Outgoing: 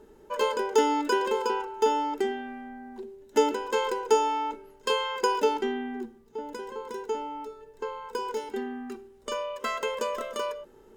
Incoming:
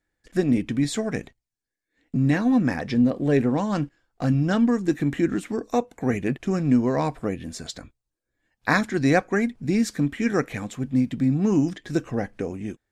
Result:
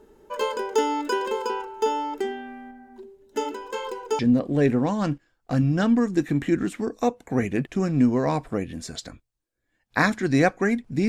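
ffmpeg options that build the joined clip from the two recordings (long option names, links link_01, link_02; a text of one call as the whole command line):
ffmpeg -i cue0.wav -i cue1.wav -filter_complex "[0:a]asettb=1/sr,asplit=3[link_01][link_02][link_03];[link_01]atrim=end=2.714[link_04];[link_02]atrim=start=2.71:end=4.19,asetpts=PTS-STARTPTS,afade=type=in:duration=0.004:curve=qsin,afade=type=out:start_time=1.476:duration=0.004:curve=qsin,flanger=delay=0.2:depth=3:regen=-42:speed=1.7:shape=sinusoidal[link_05];[link_03]atrim=start=4.186[link_06];[link_04][link_05]acrossfade=duration=0.004:curve1=hsin:curve2=qsin[link_07];[link_07][link_06]acrossfade=duration=0.004:curve1=qsin:curve2=hsin,apad=whole_dur=11.08,atrim=end=11.08,atrim=end=4.192[link_08];[1:a]atrim=start=2.898:end=9.79[link_09];[link_08][link_09]acrossfade=duration=0.004:curve1=hsin:curve2=hsin" out.wav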